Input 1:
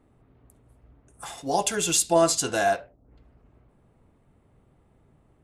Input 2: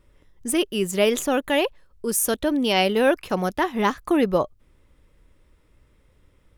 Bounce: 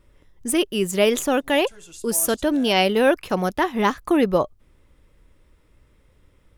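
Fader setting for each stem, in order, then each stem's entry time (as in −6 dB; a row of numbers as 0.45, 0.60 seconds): −20.0, +1.5 decibels; 0.00, 0.00 seconds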